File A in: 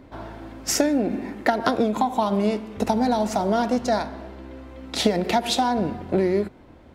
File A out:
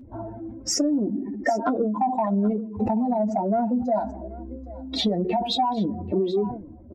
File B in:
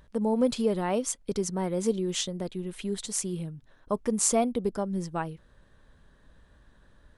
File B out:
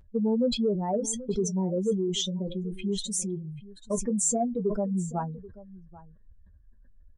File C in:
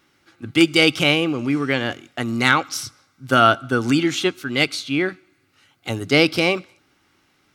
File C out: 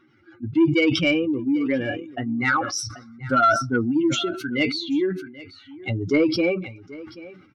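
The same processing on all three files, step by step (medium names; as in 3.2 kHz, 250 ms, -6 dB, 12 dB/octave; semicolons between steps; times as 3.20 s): spectral contrast enhancement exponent 2.4; in parallel at +1 dB: compression, threshold -31 dBFS; on the sum: flange 0.28 Hz, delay 8.7 ms, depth 2.1 ms, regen -35%; saturation -9 dBFS; on a send: delay 784 ms -19 dB; on the sum: decay stretcher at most 85 dB/s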